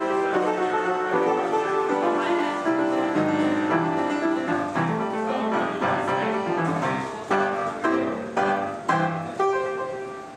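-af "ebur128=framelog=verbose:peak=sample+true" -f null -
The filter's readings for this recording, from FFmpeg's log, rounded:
Integrated loudness:
  I:         -24.1 LUFS
  Threshold: -34.1 LUFS
Loudness range:
  LRA:         1.8 LU
  Threshold: -44.1 LUFS
  LRA low:   -25.0 LUFS
  LRA high:  -23.1 LUFS
Sample peak:
  Peak:       -9.1 dBFS
True peak:
  Peak:       -9.1 dBFS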